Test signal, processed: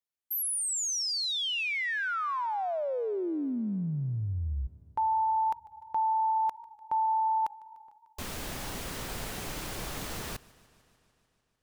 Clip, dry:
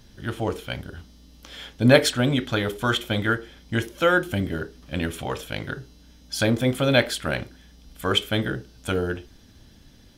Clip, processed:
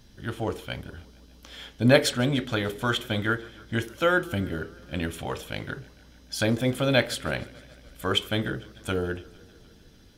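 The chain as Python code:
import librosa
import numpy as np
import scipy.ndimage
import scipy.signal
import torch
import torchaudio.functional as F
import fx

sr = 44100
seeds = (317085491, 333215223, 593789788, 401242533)

y = fx.echo_warbled(x, sr, ms=149, feedback_pct=72, rate_hz=2.8, cents=106, wet_db=-23.0)
y = F.gain(torch.from_numpy(y), -3.0).numpy()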